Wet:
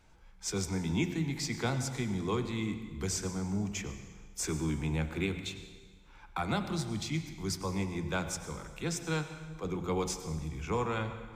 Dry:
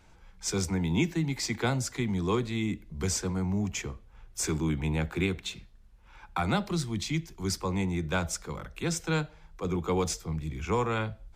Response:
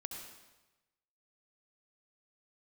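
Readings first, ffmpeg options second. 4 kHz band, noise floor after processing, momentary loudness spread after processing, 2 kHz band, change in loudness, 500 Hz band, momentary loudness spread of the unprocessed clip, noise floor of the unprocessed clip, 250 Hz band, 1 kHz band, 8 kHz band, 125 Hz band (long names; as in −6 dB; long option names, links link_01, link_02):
−3.5 dB, −55 dBFS, 7 LU, −4.0 dB, −4.0 dB, −4.0 dB, 8 LU, −55 dBFS, −4.0 dB, −4.0 dB, −3.5 dB, −4.0 dB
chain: -filter_complex "[0:a]bandreject=frequency=88.67:width_type=h:width=4,bandreject=frequency=177.34:width_type=h:width=4,bandreject=frequency=266.01:width_type=h:width=4,bandreject=frequency=354.68:width_type=h:width=4,bandreject=frequency=443.35:width_type=h:width=4,bandreject=frequency=532.02:width_type=h:width=4,bandreject=frequency=620.69:width_type=h:width=4,bandreject=frequency=709.36:width_type=h:width=4,bandreject=frequency=798.03:width_type=h:width=4,bandreject=frequency=886.7:width_type=h:width=4,bandreject=frequency=975.37:width_type=h:width=4,bandreject=frequency=1064.04:width_type=h:width=4,bandreject=frequency=1152.71:width_type=h:width=4,bandreject=frequency=1241.38:width_type=h:width=4,bandreject=frequency=1330.05:width_type=h:width=4,bandreject=frequency=1418.72:width_type=h:width=4,bandreject=frequency=1507.39:width_type=h:width=4,bandreject=frequency=1596.06:width_type=h:width=4,bandreject=frequency=1684.73:width_type=h:width=4,bandreject=frequency=1773.4:width_type=h:width=4,bandreject=frequency=1862.07:width_type=h:width=4,bandreject=frequency=1950.74:width_type=h:width=4,bandreject=frequency=2039.41:width_type=h:width=4,bandreject=frequency=2128.08:width_type=h:width=4,bandreject=frequency=2216.75:width_type=h:width=4,bandreject=frequency=2305.42:width_type=h:width=4,bandreject=frequency=2394.09:width_type=h:width=4,bandreject=frequency=2482.76:width_type=h:width=4,bandreject=frequency=2571.43:width_type=h:width=4,bandreject=frequency=2660.1:width_type=h:width=4,bandreject=frequency=2748.77:width_type=h:width=4,bandreject=frequency=2837.44:width_type=h:width=4,bandreject=frequency=2926.11:width_type=h:width=4,bandreject=frequency=3014.78:width_type=h:width=4,bandreject=frequency=3103.45:width_type=h:width=4,asplit=2[link_01][link_02];[1:a]atrim=start_sample=2205,asetrate=31311,aresample=44100[link_03];[link_02][link_03]afir=irnorm=-1:irlink=0,volume=-3.5dB[link_04];[link_01][link_04]amix=inputs=2:normalize=0,volume=-7.5dB"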